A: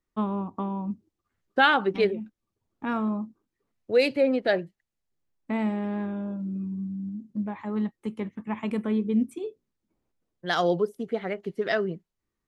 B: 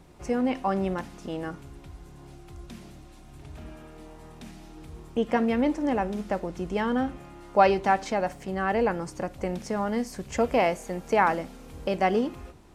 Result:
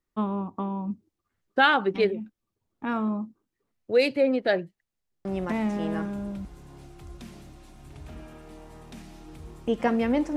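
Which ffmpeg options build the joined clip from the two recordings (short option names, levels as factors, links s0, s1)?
-filter_complex "[0:a]apad=whole_dur=10.36,atrim=end=10.36,atrim=end=6.45,asetpts=PTS-STARTPTS[s0];[1:a]atrim=start=0.74:end=5.85,asetpts=PTS-STARTPTS[s1];[s0][s1]acrossfade=d=1.2:c1=log:c2=log"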